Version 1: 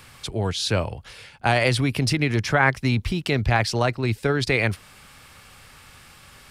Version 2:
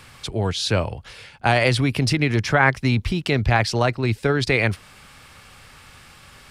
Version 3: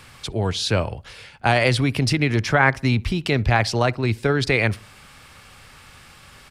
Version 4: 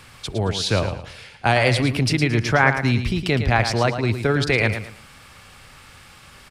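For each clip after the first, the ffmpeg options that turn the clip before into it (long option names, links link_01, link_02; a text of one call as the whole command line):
ffmpeg -i in.wav -af "highshelf=frequency=11000:gain=-7.5,volume=2dB" out.wav
ffmpeg -i in.wav -filter_complex "[0:a]asplit=2[link_01][link_02];[link_02]adelay=63,lowpass=frequency=1600:poles=1,volume=-23dB,asplit=2[link_03][link_04];[link_04]adelay=63,lowpass=frequency=1600:poles=1,volume=0.46,asplit=2[link_05][link_06];[link_06]adelay=63,lowpass=frequency=1600:poles=1,volume=0.46[link_07];[link_01][link_03][link_05][link_07]amix=inputs=4:normalize=0" out.wav
ffmpeg -i in.wav -af "aecho=1:1:111|222|333:0.355|0.103|0.0298" out.wav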